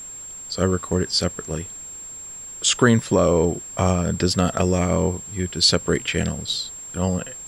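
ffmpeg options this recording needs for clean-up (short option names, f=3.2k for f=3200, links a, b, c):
-af "bandreject=f=7.5k:w=30,agate=range=-21dB:threshold=-29dB"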